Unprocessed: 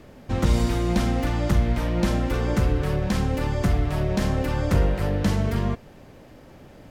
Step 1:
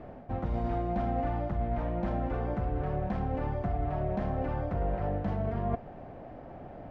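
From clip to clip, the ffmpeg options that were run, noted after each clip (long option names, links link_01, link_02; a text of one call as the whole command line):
ffmpeg -i in.wav -af "areverse,acompressor=threshold=-29dB:ratio=6,areverse,lowpass=1600,equalizer=frequency=710:width=4.2:gain=12" out.wav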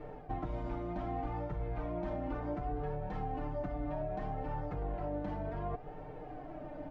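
ffmpeg -i in.wav -af "aecho=1:1:6.6:0.82,acompressor=threshold=-32dB:ratio=4,flanger=delay=2.2:depth=1.2:regen=30:speed=0.66:shape=sinusoidal,volume=1.5dB" out.wav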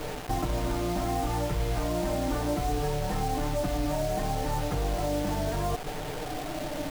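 ffmpeg -i in.wav -filter_complex "[0:a]asplit=2[link_01][link_02];[link_02]alimiter=level_in=9.5dB:limit=-24dB:level=0:latency=1:release=62,volume=-9.5dB,volume=1dB[link_03];[link_01][link_03]amix=inputs=2:normalize=0,acrusher=bits=6:mix=0:aa=0.000001,volume=4dB" out.wav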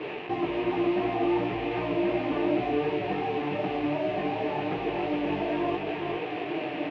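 ffmpeg -i in.wav -af "flanger=delay=16:depth=4.8:speed=2.7,highpass=240,equalizer=frequency=250:width_type=q:width=4:gain=-5,equalizer=frequency=370:width_type=q:width=4:gain=9,equalizer=frequency=560:width_type=q:width=4:gain=-6,equalizer=frequency=830:width_type=q:width=4:gain=-4,equalizer=frequency=1400:width_type=q:width=4:gain=-9,equalizer=frequency=2600:width_type=q:width=4:gain=8,lowpass=frequency=2800:width=0.5412,lowpass=frequency=2800:width=1.3066,aecho=1:1:414:0.596,volume=6dB" out.wav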